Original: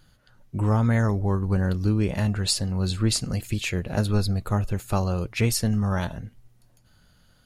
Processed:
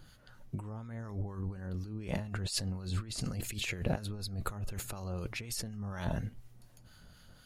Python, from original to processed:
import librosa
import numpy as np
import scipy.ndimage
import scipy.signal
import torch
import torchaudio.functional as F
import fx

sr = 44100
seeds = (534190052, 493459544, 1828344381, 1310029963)

y = fx.over_compress(x, sr, threshold_db=-32.0, ratio=-1.0)
y = fx.harmonic_tremolo(y, sr, hz=4.1, depth_pct=50, crossover_hz=1100.0)
y = F.gain(torch.from_numpy(y), -3.5).numpy()